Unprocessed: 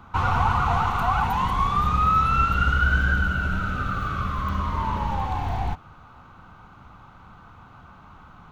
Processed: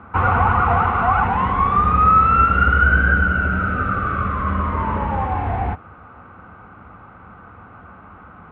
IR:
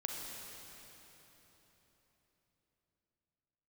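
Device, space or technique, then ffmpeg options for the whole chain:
bass cabinet: -af "highpass=73,equalizer=frequency=140:width_type=q:width=4:gain=-10,equalizer=frequency=480:width_type=q:width=4:gain=4,equalizer=frequency=940:width_type=q:width=4:gain=-6,lowpass=frequency=2200:width=0.5412,lowpass=frequency=2200:width=1.3066,volume=8dB"

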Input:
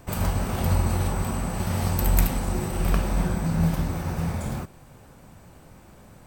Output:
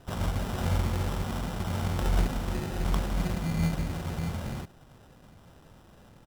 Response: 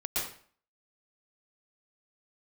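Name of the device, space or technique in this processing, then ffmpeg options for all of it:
crushed at another speed: -af "asetrate=35280,aresample=44100,acrusher=samples=25:mix=1:aa=0.000001,asetrate=55125,aresample=44100,volume=-5dB"

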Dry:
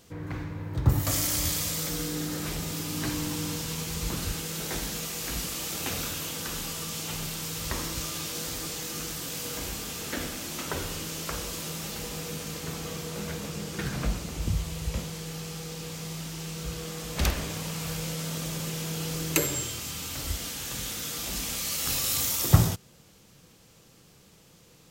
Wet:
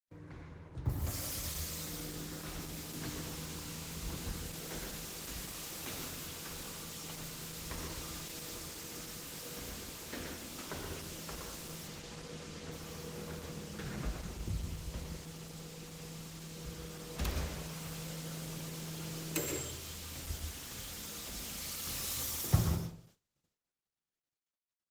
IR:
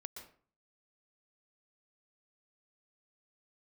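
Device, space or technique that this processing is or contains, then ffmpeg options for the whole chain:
speakerphone in a meeting room: -filter_complex "[0:a]asettb=1/sr,asplit=3[link_01][link_02][link_03];[link_01]atrim=end=11.874[link_04];[link_02]atrim=start=11.87:end=12.73,asetpts=PTS-STARTPTS,afade=type=in:duration=0.004:curve=qsin,afade=type=out:start_time=0.856:duration=0.004:curve=qsin,lowpass=7300[link_05];[link_03]atrim=start=12.726[link_06];[link_04][link_05]acrossfade=duration=0.004:curve1=hsin:curve2=qsin[link_07];[link_07][link_06]acrossfade=duration=0.004:curve1=qsin:curve2=hsin[link_08];[1:a]atrim=start_sample=2205[link_09];[link_08][link_09]afir=irnorm=-1:irlink=0,dynaudnorm=framelen=230:gausssize=13:maxgain=4dB,agate=range=-34dB:threshold=-53dB:ratio=16:detection=peak,volume=-8dB" -ar 48000 -c:a libopus -b:a 16k

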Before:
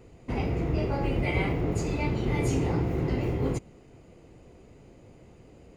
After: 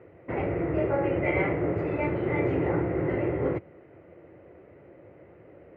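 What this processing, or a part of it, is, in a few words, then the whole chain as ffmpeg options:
bass cabinet: -af "highpass=frequency=83:width=0.5412,highpass=frequency=83:width=1.3066,equalizer=frequency=130:width_type=q:width=4:gain=-5,equalizer=frequency=230:width_type=q:width=4:gain=-9,equalizer=frequency=340:width_type=q:width=4:gain=6,equalizer=frequency=570:width_type=q:width=4:gain=9,equalizer=frequency=1400:width_type=q:width=4:gain=5,equalizer=frequency=1900:width_type=q:width=4:gain=7,lowpass=frequency=2300:width=0.5412,lowpass=frequency=2300:width=1.3066"

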